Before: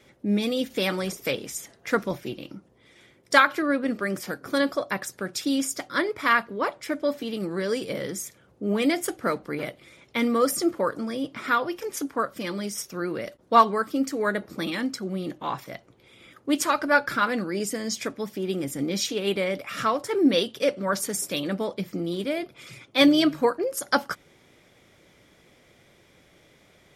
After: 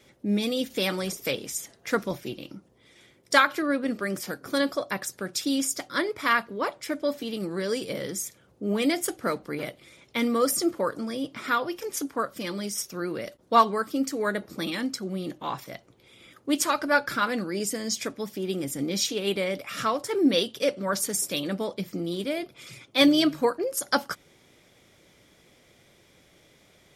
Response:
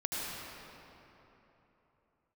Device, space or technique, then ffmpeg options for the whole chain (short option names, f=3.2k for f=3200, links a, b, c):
exciter from parts: -filter_complex "[0:a]asplit=2[a][b];[b]highpass=2.6k,asoftclip=type=tanh:threshold=-16.5dB,volume=-5dB[c];[a][c]amix=inputs=2:normalize=0,volume=-1.5dB"